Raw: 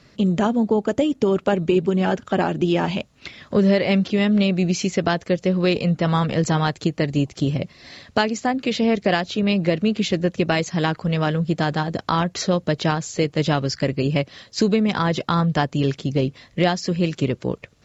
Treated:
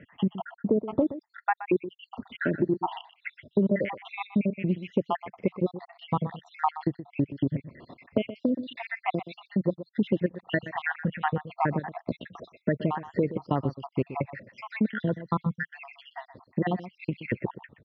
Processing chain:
time-frequency cells dropped at random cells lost 76%
spectral tilt −3 dB per octave
downward compressor 2.5 to 1, threshold −25 dBFS, peak gain reduction 11.5 dB
loudspeaker in its box 150–3,000 Hz, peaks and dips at 160 Hz −4 dB, 960 Hz +6 dB, 1,900 Hz +9 dB
single-tap delay 124 ms −13.5 dB
level +1 dB

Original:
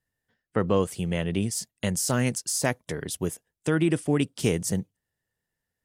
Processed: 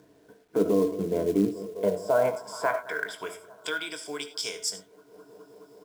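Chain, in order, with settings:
on a send: bucket-brigade delay 210 ms, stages 2,048, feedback 82%, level −22 dB
on the sum: band-pass filter sweep 310 Hz → 5,100 Hz, 0:01.49–0:03.98
flat-topped bell 740 Hz +8 dB 2.4 octaves
convolution reverb, pre-delay 20 ms, DRR 12.5 dB
in parallel at −2.5 dB: upward compression, threshold −32 dBFS
on the sum: EQ curve with evenly spaced ripples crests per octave 1.7, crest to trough 12 dB
brickwall limiter −14.5 dBFS, peak gain reduction 9 dB
high-pass filter 40 Hz 24 dB per octave
hum removal 88.74 Hz, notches 11
log-companded quantiser 6 bits
double-tracking delay 20 ms −10.5 dB

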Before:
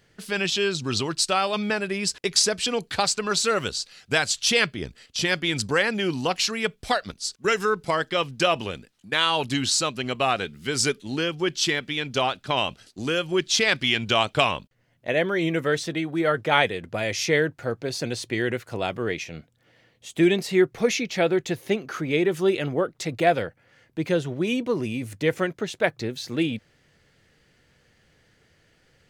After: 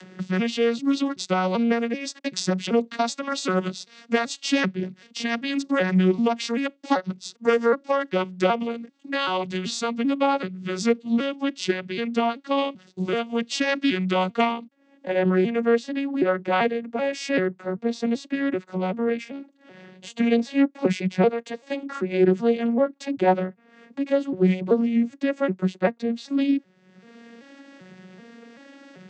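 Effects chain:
vocoder with an arpeggio as carrier major triad, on F#3, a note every 386 ms
in parallel at −1 dB: upward compression, threshold −24 dBFS
0:21.29–0:21.83: on the sum: parametric band 220 Hz −12 dB 0.65 octaves
highs frequency-modulated by the lows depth 0.14 ms
level −3.5 dB

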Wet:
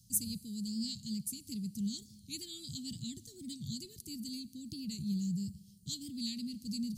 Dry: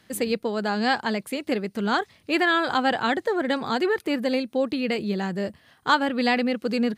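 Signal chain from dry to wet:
reversed playback
upward compression, threshold −38 dBFS
reversed playback
elliptic band-stop filter 150–5,800 Hz, stop band 60 dB
four-comb reverb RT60 1.9 s, combs from 30 ms, DRR 19.5 dB
wow of a warped record 45 rpm, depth 100 cents
level +3.5 dB

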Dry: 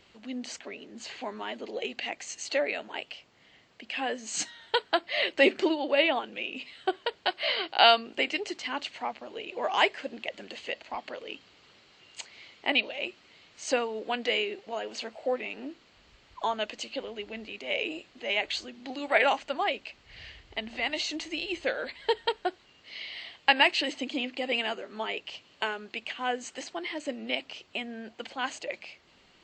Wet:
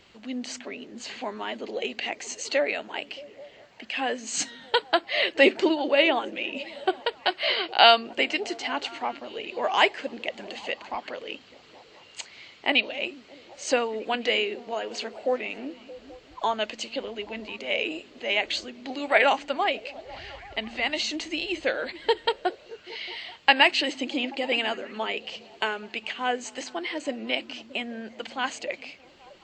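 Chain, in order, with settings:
on a send: echo through a band-pass that steps 208 ms, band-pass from 160 Hz, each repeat 0.7 octaves, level −11 dB
on the sum: level +3.5 dB

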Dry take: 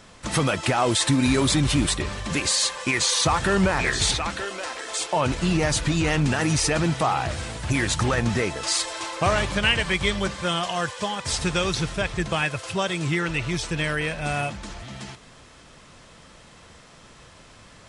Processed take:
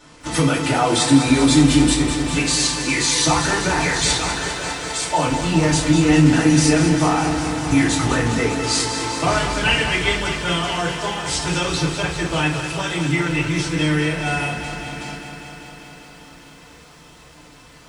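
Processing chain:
parametric band 97 Hz −13 dB 0.41 octaves
feedback delay network reverb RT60 0.36 s, low-frequency decay 1.45×, high-frequency decay 1×, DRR −7 dB
feedback echo at a low word length 200 ms, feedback 80%, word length 8 bits, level −9.5 dB
level −5 dB

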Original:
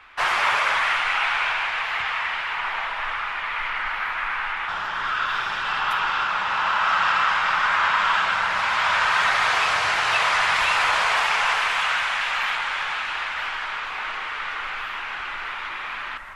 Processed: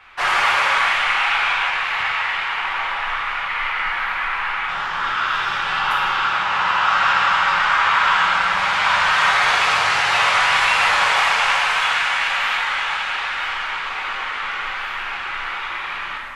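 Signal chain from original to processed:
reverb whose tail is shaped and stops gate 300 ms falling, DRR −2 dB

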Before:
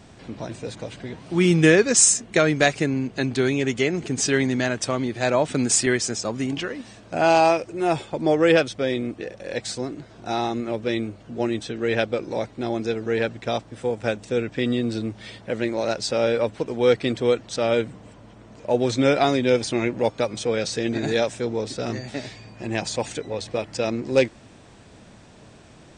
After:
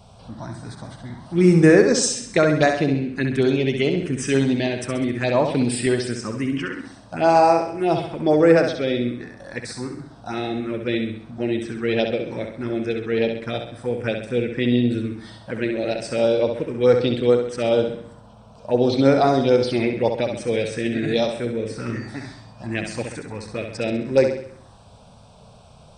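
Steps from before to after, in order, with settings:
parametric band 6,900 Hz −12.5 dB 0.3 octaves
phaser swept by the level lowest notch 300 Hz, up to 3,200 Hz, full sweep at −14.5 dBFS
flutter between parallel walls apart 11.3 metres, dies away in 0.62 s
level +2.5 dB

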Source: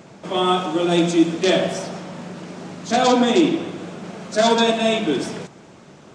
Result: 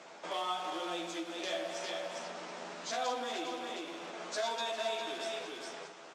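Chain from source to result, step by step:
delay that swaps between a low-pass and a high-pass 103 ms, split 1,100 Hz, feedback 53%, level −11 dB
in parallel at −12 dB: wrap-around overflow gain 19.5 dB
on the sum: single-tap delay 405 ms −7 dB
downward compressor 3 to 1, threshold −29 dBFS, peak gain reduction 14 dB
band-pass filter 610–7,400 Hz
double-tracking delay 12 ms −4.5 dB
level −6 dB
Opus 96 kbit/s 48,000 Hz

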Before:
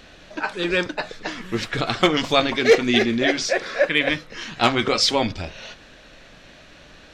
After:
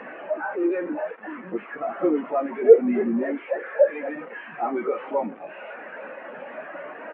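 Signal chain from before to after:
linear delta modulator 16 kbit/s, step −18 dBFS
pitch-shifted copies added −4 semitones −15 dB, −3 semitones −17 dB, +7 semitones −12 dB
mid-hump overdrive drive 29 dB, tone 1,200 Hz, clips at −1.5 dBFS
Butterworth high-pass 150 Hz
every bin expanded away from the loudest bin 2.5 to 1
level −1 dB

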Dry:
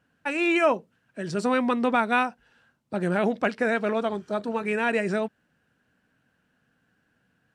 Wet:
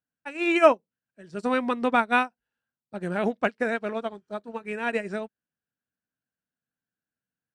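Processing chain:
expander for the loud parts 2.5 to 1, over −38 dBFS
level +6.5 dB

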